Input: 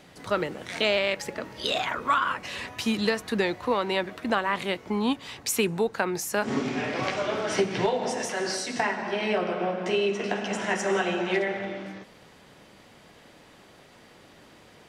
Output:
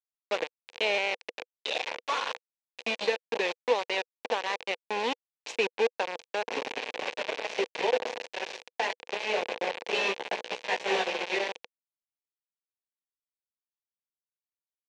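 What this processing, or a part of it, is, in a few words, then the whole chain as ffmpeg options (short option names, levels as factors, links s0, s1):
hand-held game console: -filter_complex "[0:a]acrusher=bits=3:mix=0:aa=0.000001,highpass=410,equalizer=f=490:t=q:w=4:g=10,equalizer=f=870:t=q:w=4:g=4,equalizer=f=1300:t=q:w=4:g=-9,equalizer=f=2500:t=q:w=4:g=6,equalizer=f=4900:t=q:w=4:g=-4,lowpass=f=5300:w=0.5412,lowpass=f=5300:w=1.3066,asettb=1/sr,asplit=3[s0][s1][s2];[s0]atrim=end=9.934[s3];[s1]atrim=start=9.93:end=11.06,asetpts=PTS-STARTPTS,afade=t=in:d=0.004:c=qsin,afade=t=out:st=1.126:d=0.004:c=qsin,asplit=2[s4][s5];[s5]adelay=16,volume=0.75[s6];[s4][s6]amix=inputs=2:normalize=0,atrim=end_sample=49833[s7];[s2]atrim=start=11.056[s8];[s3][s7]acrossfade=d=0.004:c1=hsin:c2=qsin[s9];[s9][s8]acrossfade=d=0.004:c1=qsin:c2=hsin,volume=0.531"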